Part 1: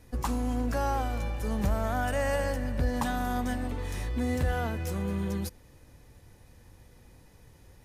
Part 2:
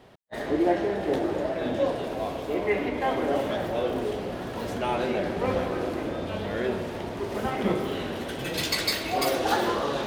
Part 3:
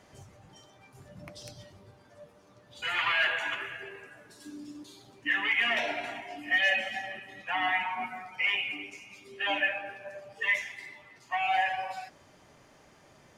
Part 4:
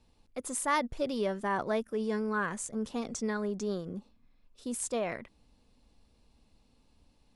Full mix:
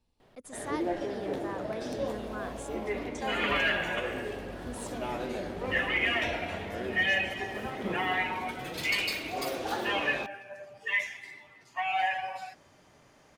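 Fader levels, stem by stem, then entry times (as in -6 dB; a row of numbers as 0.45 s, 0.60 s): -17.0 dB, -8.5 dB, -1.5 dB, -9.5 dB; 1.85 s, 0.20 s, 0.45 s, 0.00 s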